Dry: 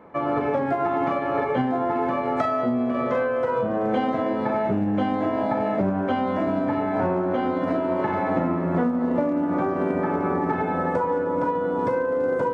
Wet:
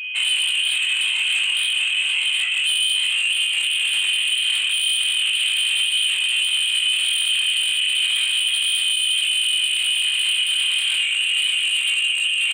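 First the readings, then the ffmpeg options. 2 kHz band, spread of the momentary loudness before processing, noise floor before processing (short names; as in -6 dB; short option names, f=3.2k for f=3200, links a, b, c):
+14.0 dB, 1 LU, -26 dBFS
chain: -filter_complex "[0:a]asplit=2[a][b];[b]aecho=0:1:45|585|634:0.631|0.119|0.447[c];[a][c]amix=inputs=2:normalize=0,acompressor=threshold=-22dB:ratio=10,tiltshelf=f=650:g=9.5,afftfilt=real='hypot(re,im)*cos(2*PI*random(0))':imag='hypot(re,im)*sin(2*PI*random(1))':win_size=512:overlap=0.75,asoftclip=type=hard:threshold=-25.5dB,lowshelf=f=400:g=4.5,lowpass=f=2.8k:t=q:w=0.5098,lowpass=f=2.8k:t=q:w=0.6013,lowpass=f=2.8k:t=q:w=0.9,lowpass=f=2.8k:t=q:w=2.563,afreqshift=-3300,aeval=exprs='0.178*sin(PI/2*3.16*val(0)/0.178)':c=same,flanger=delay=18.5:depth=5.2:speed=0.33,aeval=exprs='val(0)+0.0447*sin(2*PI*2500*n/s)':c=same"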